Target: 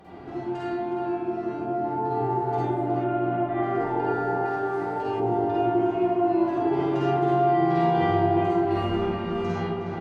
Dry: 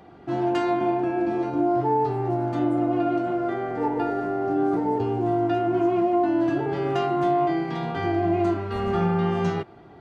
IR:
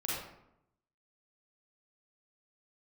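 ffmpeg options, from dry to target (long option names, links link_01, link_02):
-filter_complex "[0:a]acompressor=threshold=-37dB:ratio=5,asplit=2[link_01][link_02];[link_02]adelay=364,lowpass=frequency=2200:poles=1,volume=-3.5dB,asplit=2[link_03][link_04];[link_04]adelay=364,lowpass=frequency=2200:poles=1,volume=0.46,asplit=2[link_05][link_06];[link_06]adelay=364,lowpass=frequency=2200:poles=1,volume=0.46,asplit=2[link_07][link_08];[link_08]adelay=364,lowpass=frequency=2200:poles=1,volume=0.46,asplit=2[link_09][link_10];[link_10]adelay=364,lowpass=frequency=2200:poles=1,volume=0.46,asplit=2[link_11][link_12];[link_12]adelay=364,lowpass=frequency=2200:poles=1,volume=0.46[link_13];[link_01][link_03][link_05][link_07][link_09][link_11][link_13]amix=inputs=7:normalize=0[link_14];[1:a]atrim=start_sample=2205,asetrate=34398,aresample=44100[link_15];[link_14][link_15]afir=irnorm=-1:irlink=0,dynaudnorm=framelen=460:gausssize=9:maxgain=5.5dB,asettb=1/sr,asplit=3[link_16][link_17][link_18];[link_16]atrim=end=3.044[link_19];[link_17]atrim=start=3.04:end=3.63,asetpts=PTS-STARTPTS,afade=type=in:duration=0.004:curve=qsin,afade=type=out:start_time=0.586:duration=0.004:curve=qsin,lowpass=frequency=3400:width=0.5412,lowpass=frequency=3400:width=1.3066[link_20];[link_18]atrim=start=3.626[link_21];[link_19][link_20]acrossfade=duration=0.004:curve1=hsin:curve2=qsin[link_22];[link_22][link_21]acrossfade=duration=0.004:curve1=qsin:curve2=hsin,asettb=1/sr,asplit=3[link_23][link_24][link_25];[link_23]atrim=end=4.454[link_26];[link_24]atrim=start=4.45:end=5.2,asetpts=PTS-STARTPTS,afade=type=in:duration=0.004:curve=qsin,afade=type=out:start_time=0.746:duration=0.004:curve=qsin,tiltshelf=frequency=890:gain=-6[link_27];[link_25]atrim=start=5.196[link_28];[link_26][link_27]acrossfade=duration=0.004:curve1=hsin:curve2=qsin[link_29];[link_29][link_28]acrossfade=duration=0.004:curve1=qsin:curve2=hsin"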